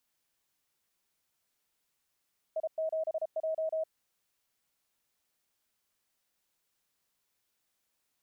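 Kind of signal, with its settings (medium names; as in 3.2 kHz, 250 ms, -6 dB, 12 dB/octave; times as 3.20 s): Morse "I7J" 33 wpm 637 Hz -29 dBFS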